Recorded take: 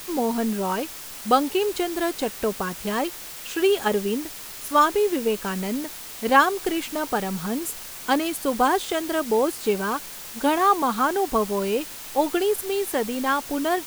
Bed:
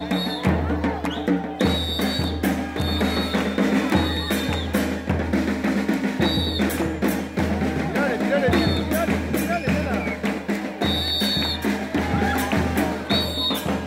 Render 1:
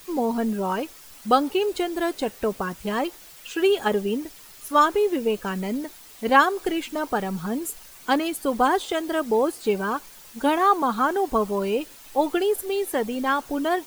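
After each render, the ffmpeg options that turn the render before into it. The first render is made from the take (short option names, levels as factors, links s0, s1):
-af "afftdn=nr=10:nf=-38"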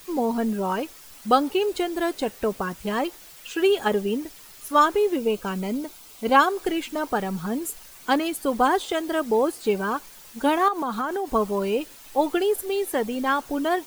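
-filter_complex "[0:a]asettb=1/sr,asplit=3[s0][s1][s2];[s0]atrim=end=5.144[s3];[s1]atrim=start=5.14:end=6.48,asetpts=PTS-STARTPTS,afade=t=in:d=0.004:c=qsin,afade=t=out:st=1.336:d=0.004:c=qsin,bandreject=f=1800:w=5.3[s4];[s2]atrim=start=6.476[s5];[s3][s4]acrossfade=d=0.004:c1=hsin:c2=qsin[s6];[s6][s5]acrossfade=d=0.004:c1=qsin:c2=hsin,asettb=1/sr,asplit=3[s7][s8][s9];[s7]atrim=end=10.684[s10];[s8]atrim=start=10.68:end=11.31,asetpts=PTS-STARTPTS,afade=t=in:d=0.004:c=qsin,afade=t=out:st=0.626:d=0.004:c=qsin,acompressor=threshold=0.0708:ratio=6:attack=3.2:release=140:knee=1:detection=peak[s11];[s9]atrim=start=11.306[s12];[s10][s11]acrossfade=d=0.004:c1=hsin:c2=qsin[s13];[s13][s12]acrossfade=d=0.004:c1=qsin:c2=hsin"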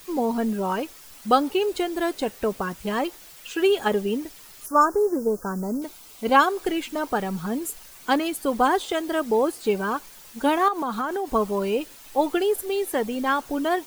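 -filter_complex "[0:a]asettb=1/sr,asplit=3[s0][s1][s2];[s0]atrim=end=4.664[s3];[s1]atrim=start=4.66:end=5.82,asetpts=PTS-STARTPTS,afade=t=in:d=0.004:c=qsin,afade=t=out:st=1.156:d=0.004:c=qsin,asuperstop=centerf=2900:order=8:qfactor=0.8[s4];[s2]atrim=start=5.816[s5];[s3][s4]acrossfade=d=0.004:c1=hsin:c2=qsin[s6];[s6][s5]acrossfade=d=0.004:c1=qsin:c2=hsin"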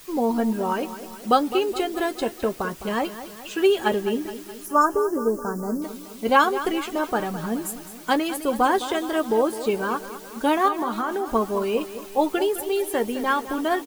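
-filter_complex "[0:a]asplit=2[s0][s1];[s1]adelay=13,volume=0.299[s2];[s0][s2]amix=inputs=2:normalize=0,aecho=1:1:210|420|630|840|1050|1260:0.224|0.125|0.0702|0.0393|0.022|0.0123"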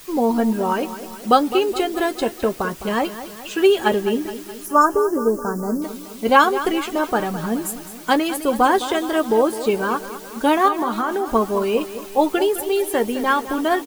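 -af "volume=1.58"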